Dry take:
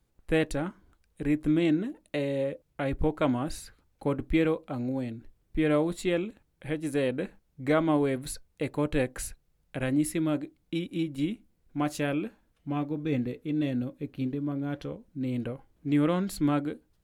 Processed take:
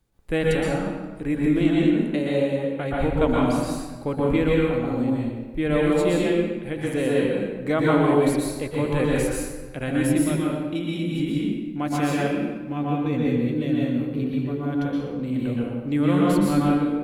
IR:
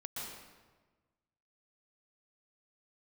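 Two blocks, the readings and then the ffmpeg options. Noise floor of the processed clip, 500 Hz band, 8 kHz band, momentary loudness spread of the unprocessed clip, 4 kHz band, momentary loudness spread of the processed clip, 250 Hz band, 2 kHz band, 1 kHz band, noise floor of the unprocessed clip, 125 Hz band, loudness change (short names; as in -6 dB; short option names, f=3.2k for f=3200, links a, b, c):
-35 dBFS, +7.0 dB, +5.5 dB, 13 LU, +6.5 dB, 8 LU, +7.0 dB, +6.5 dB, +8.0 dB, -72 dBFS, +7.5 dB, +6.5 dB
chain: -filter_complex "[1:a]atrim=start_sample=2205[a];[0:a][a]afir=irnorm=-1:irlink=0,volume=7dB"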